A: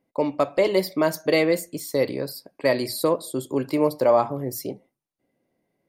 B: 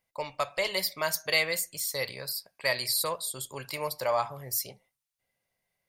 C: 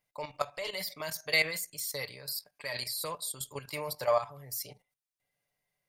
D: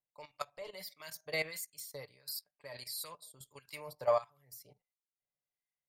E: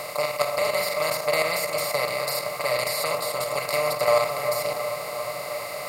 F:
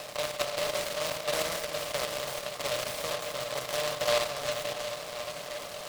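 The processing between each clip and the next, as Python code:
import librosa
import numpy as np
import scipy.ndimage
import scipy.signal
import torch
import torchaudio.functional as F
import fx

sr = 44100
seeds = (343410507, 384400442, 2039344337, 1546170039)

y1 = fx.tone_stack(x, sr, knobs='10-0-10')
y1 = F.gain(torch.from_numpy(y1), 4.5).numpy()
y2 = y1 + 0.48 * np.pad(y1, (int(6.8 * sr / 1000.0), 0))[:len(y1)]
y2 = fx.level_steps(y2, sr, step_db=12)
y3 = fx.harmonic_tremolo(y2, sr, hz=1.5, depth_pct=70, crossover_hz=1200.0)
y3 = fx.upward_expand(y3, sr, threshold_db=-54.0, expansion=1.5)
y3 = F.gain(torch.from_numpy(y3), 1.0).numpy()
y4 = fx.bin_compress(y3, sr, power=0.2)
y4 = fx.echo_wet_lowpass(y4, sr, ms=357, feedback_pct=73, hz=1700.0, wet_db=-9)
y4 = F.gain(torch.from_numpy(y4), 5.5).numpy()
y5 = fx.air_absorb(y4, sr, metres=88.0)
y5 = fx.noise_mod_delay(y5, sr, seeds[0], noise_hz=2800.0, depth_ms=0.13)
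y5 = F.gain(torch.from_numpy(y5), -6.5).numpy()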